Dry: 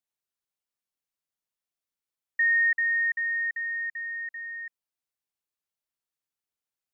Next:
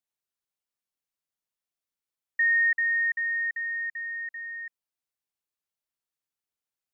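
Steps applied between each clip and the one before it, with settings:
no processing that can be heard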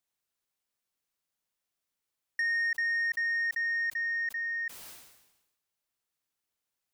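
downward compressor 4 to 1, threshold −31 dBFS, peak gain reduction 8.5 dB
soft clipping −30 dBFS, distortion −18 dB
level that may fall only so fast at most 56 dB per second
level +4.5 dB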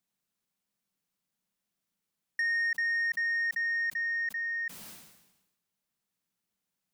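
parametric band 190 Hz +15 dB 0.73 octaves

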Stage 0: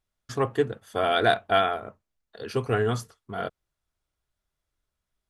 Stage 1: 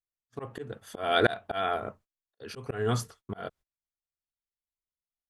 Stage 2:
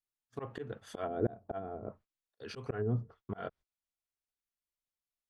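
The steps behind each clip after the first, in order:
volume swells 308 ms; noise gate −56 dBFS, range −26 dB; level +3 dB
treble cut that deepens with the level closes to 370 Hz, closed at −27 dBFS; level −2.5 dB

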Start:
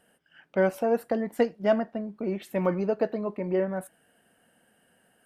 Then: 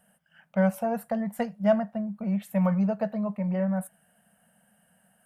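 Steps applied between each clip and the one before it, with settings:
drawn EQ curve 120 Hz 0 dB, 200 Hz +8 dB, 330 Hz −24 dB, 610 Hz +1 dB, 4,700 Hz −6 dB, 9,600 Hz +4 dB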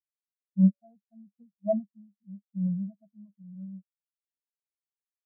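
each half-wave held at its own peak
transient designer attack −1 dB, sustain +6 dB
every bin expanded away from the loudest bin 4 to 1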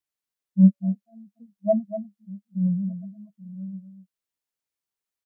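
single-tap delay 243 ms −11 dB
level +5.5 dB

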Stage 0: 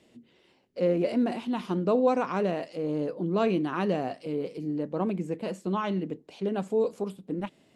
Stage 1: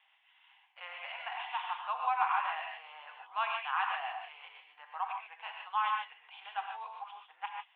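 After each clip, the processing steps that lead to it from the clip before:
Chebyshev band-pass filter 780–3,400 Hz, order 5
reverb whose tail is shaped and stops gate 170 ms rising, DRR 1.5 dB
level +1.5 dB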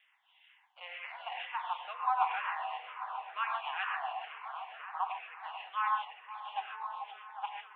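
echo whose low-pass opens from repeat to repeat 267 ms, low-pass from 400 Hz, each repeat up 1 octave, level −6 dB
frequency shifter mixed with the dry sound −2.1 Hz
level +2 dB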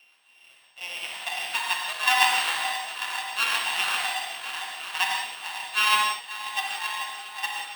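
samples sorted by size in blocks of 16 samples
parametric band 3,200 Hz +12 dB 0.95 octaves
reverb whose tail is shaped and stops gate 210 ms flat, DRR 0.5 dB
level +3.5 dB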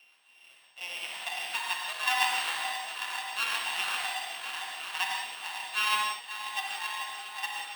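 high-pass filter 120 Hz 12 dB per octave
in parallel at 0 dB: downward compressor, threshold −33 dBFS, peak gain reduction 17.5 dB
on the sum: level −8 dB

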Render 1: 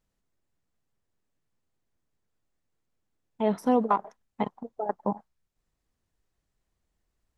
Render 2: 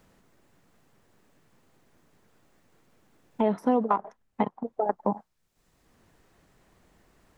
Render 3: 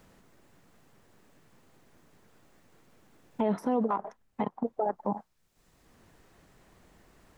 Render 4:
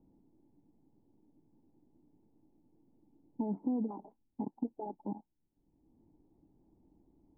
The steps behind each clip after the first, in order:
multiband upward and downward compressor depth 70%; level +1.5 dB
brickwall limiter −21.5 dBFS, peak gain reduction 11.5 dB; level +2.5 dB
formant resonators in series u; low-shelf EQ 230 Hz +7 dB

